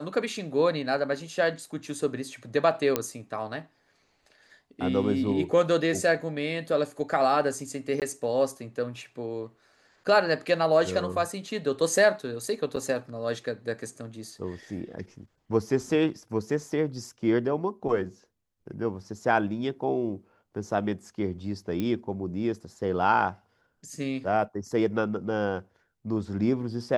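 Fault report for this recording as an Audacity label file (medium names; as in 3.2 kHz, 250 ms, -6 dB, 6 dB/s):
2.960000	2.960000	pop -9 dBFS
8.000000	8.020000	dropout 18 ms
12.760000	12.770000	dropout 6.8 ms
21.800000	21.800000	pop -18 dBFS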